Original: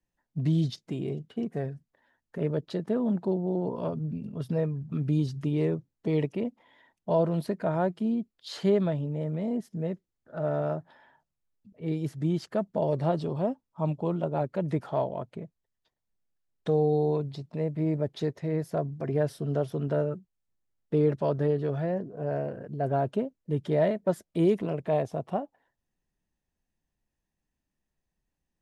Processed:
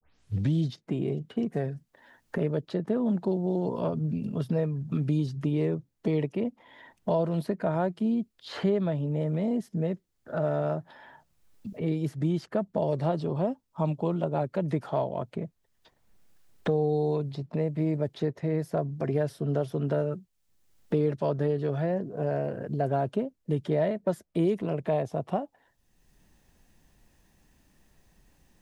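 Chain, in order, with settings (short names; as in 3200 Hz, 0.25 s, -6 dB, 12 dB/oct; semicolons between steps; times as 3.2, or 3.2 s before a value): tape start at the beginning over 0.53 s; three-band squash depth 70%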